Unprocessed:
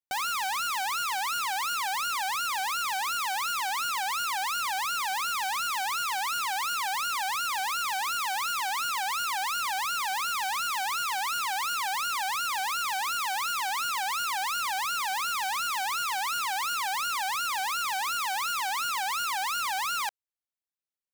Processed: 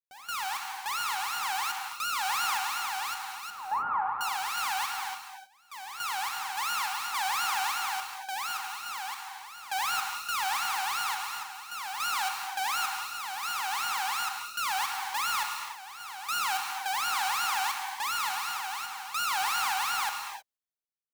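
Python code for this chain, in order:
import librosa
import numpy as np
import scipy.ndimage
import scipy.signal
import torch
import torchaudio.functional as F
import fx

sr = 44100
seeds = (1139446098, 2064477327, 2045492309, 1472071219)

y = fx.lowpass(x, sr, hz=1200.0, slope=24, at=(3.5, 4.21))
y = fx.rider(y, sr, range_db=10, speed_s=0.5)
y = fx.tremolo_random(y, sr, seeds[0], hz=3.5, depth_pct=100)
y = fx.rev_gated(y, sr, seeds[1], gate_ms=340, shape='flat', drr_db=3.0)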